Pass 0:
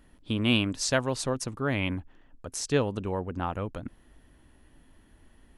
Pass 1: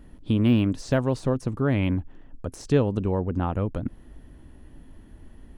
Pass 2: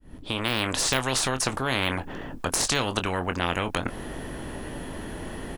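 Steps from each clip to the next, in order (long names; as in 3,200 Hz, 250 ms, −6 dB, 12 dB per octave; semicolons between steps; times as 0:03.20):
de-essing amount 85%; tilt shelving filter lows +5.5 dB, about 650 Hz; in parallel at 0 dB: downward compressor, threshold −31 dBFS, peak gain reduction 14 dB
fade in at the beginning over 0.81 s; double-tracking delay 23 ms −11 dB; every bin compressed towards the loudest bin 4 to 1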